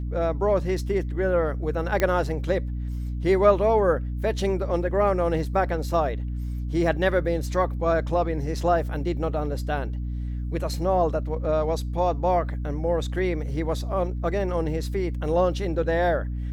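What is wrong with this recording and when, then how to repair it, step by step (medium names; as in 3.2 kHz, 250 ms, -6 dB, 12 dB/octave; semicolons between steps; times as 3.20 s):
hum 60 Hz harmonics 5 -29 dBFS
2.00 s: pop -10 dBFS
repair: de-click; de-hum 60 Hz, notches 5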